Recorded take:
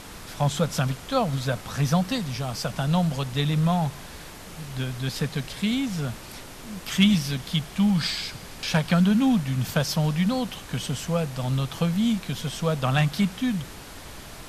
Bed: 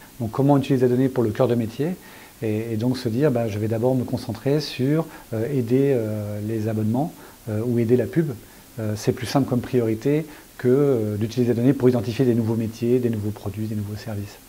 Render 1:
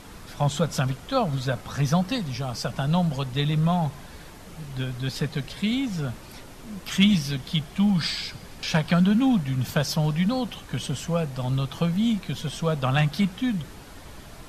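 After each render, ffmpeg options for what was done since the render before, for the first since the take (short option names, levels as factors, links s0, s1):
-af "afftdn=nr=6:nf=-42"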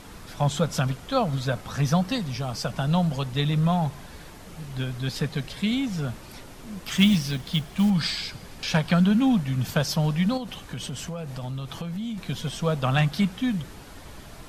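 -filter_complex "[0:a]asettb=1/sr,asplit=3[s0][s1][s2];[s0]atrim=end=6.874[s3];[s1]atrim=start=6.87:end=7.9,asetpts=PTS-STARTPTS,afade=t=in:d=0.004:c=qsin,afade=t=out:st=1.026:d=0.004:c=qsin,acrusher=bits=6:mode=log:mix=0:aa=0.000001[s4];[s2]atrim=start=7.896[s5];[s3][s4]acrossfade=d=0.004:c1=hsin:c2=qsin[s6];[s6][s5]acrossfade=d=0.004:c1=qsin:c2=hsin,asettb=1/sr,asplit=3[s7][s8][s9];[s7]atrim=end=10.374[s10];[s8]atrim=start=10.37:end=12.18,asetpts=PTS-STARTPTS,afade=t=in:d=0.004:c=qsin,afade=t=out:st=1.806:d=0.004:c=qsin,acompressor=threshold=0.0355:ratio=6:attack=3.2:release=140:knee=1:detection=peak[s11];[s9]atrim=start=12.176[s12];[s10][s11]acrossfade=d=0.004:c1=hsin:c2=qsin[s13];[s13][s12]acrossfade=d=0.004:c1=qsin:c2=hsin"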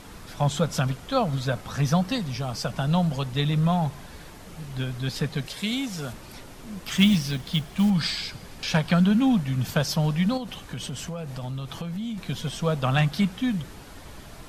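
-filter_complex "[0:a]asettb=1/sr,asplit=3[s0][s1][s2];[s0]atrim=end=5.464[s3];[s1]atrim=start=5.46:end=6.13,asetpts=PTS-STARTPTS,afade=t=in:d=0.004:c=qsin,afade=t=out:st=0.666:d=0.004:c=qsin,bass=f=250:g=-7,treble=f=4000:g=6[s4];[s2]atrim=start=6.126[s5];[s3][s4]acrossfade=d=0.004:c1=hsin:c2=qsin[s6];[s6][s5]acrossfade=d=0.004:c1=qsin:c2=hsin"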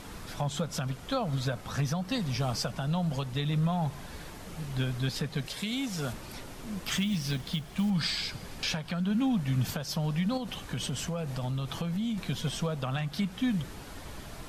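-af "acompressor=threshold=0.0794:ratio=4,alimiter=limit=0.1:level=0:latency=1:release=425"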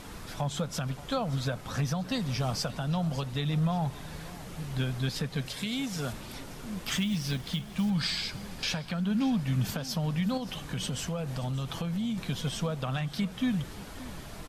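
-af "aecho=1:1:577|1154|1731:0.126|0.0516|0.0212"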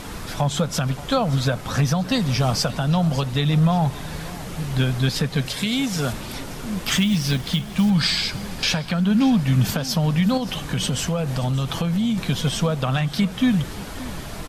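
-af "volume=3.16"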